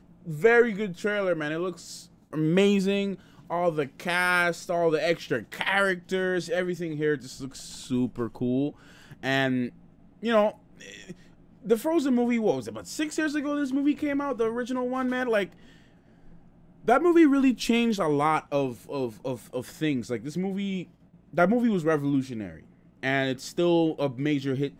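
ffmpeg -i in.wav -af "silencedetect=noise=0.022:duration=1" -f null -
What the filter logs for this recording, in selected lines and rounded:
silence_start: 15.45
silence_end: 16.88 | silence_duration: 1.43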